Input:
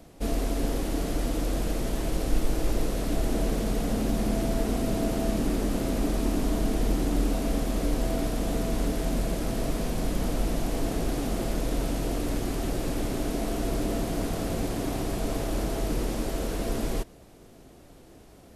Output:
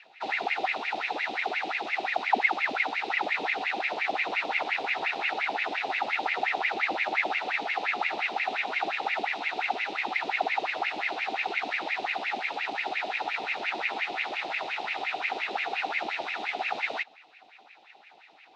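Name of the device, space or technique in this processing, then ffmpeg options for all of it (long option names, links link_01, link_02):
voice changer toy: -af "aeval=exprs='val(0)*sin(2*PI*1200*n/s+1200*0.8/5.7*sin(2*PI*5.7*n/s))':channel_layout=same,highpass=500,equalizer=frequency=540:width_type=q:width=4:gain=-8,equalizer=frequency=770:width_type=q:width=4:gain=9,equalizer=frequency=1100:width_type=q:width=4:gain=-10,equalizer=frequency=1600:width_type=q:width=4:gain=-8,equalizer=frequency=2600:width_type=q:width=4:gain=8,equalizer=frequency=3800:width_type=q:width=4:gain=9,lowpass=frequency=4700:width=0.5412,lowpass=frequency=4700:width=1.3066"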